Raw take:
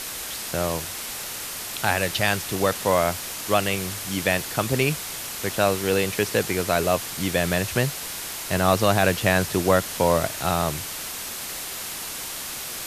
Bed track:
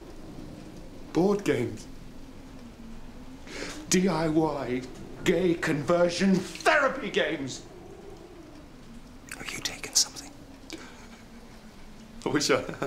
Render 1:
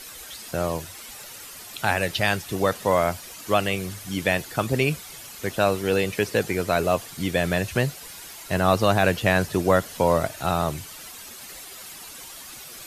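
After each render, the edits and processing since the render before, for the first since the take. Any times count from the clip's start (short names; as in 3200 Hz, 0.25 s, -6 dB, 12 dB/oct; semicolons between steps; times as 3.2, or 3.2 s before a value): denoiser 11 dB, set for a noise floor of -33 dBFS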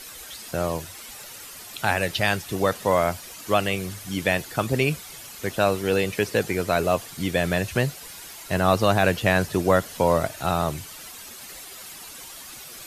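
nothing audible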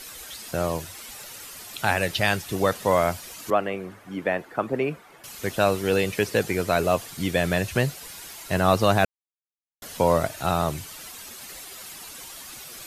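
3.5–5.24 three-band isolator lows -16 dB, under 200 Hz, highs -21 dB, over 2000 Hz; 9.05–9.82 mute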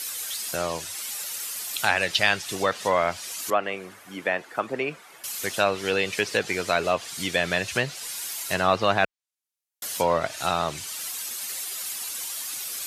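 treble ducked by the level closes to 2900 Hz, closed at -16 dBFS; tilt +3 dB/oct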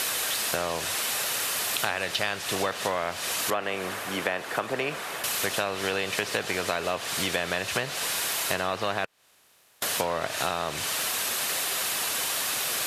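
per-bin compression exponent 0.6; compressor, threshold -24 dBFS, peak gain reduction 11.5 dB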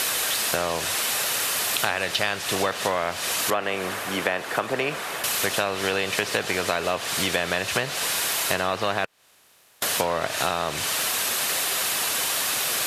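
gain +3.5 dB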